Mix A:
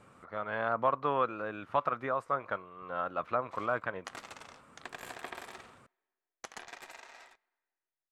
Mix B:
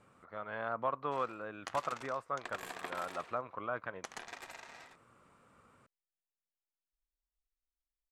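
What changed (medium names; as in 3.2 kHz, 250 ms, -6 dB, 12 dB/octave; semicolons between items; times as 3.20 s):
speech -6.0 dB; background: entry -2.40 s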